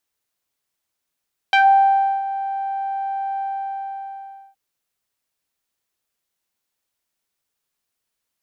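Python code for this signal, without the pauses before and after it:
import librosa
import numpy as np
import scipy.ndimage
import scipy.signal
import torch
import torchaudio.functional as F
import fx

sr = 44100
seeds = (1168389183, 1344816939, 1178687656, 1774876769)

y = fx.sub_voice(sr, note=79, wave='saw', cutoff_hz=830.0, q=2.2, env_oct=2.0, env_s=0.13, attack_ms=1.5, decay_s=0.69, sustain_db=-14.5, release_s=1.15, note_s=1.87, slope=12)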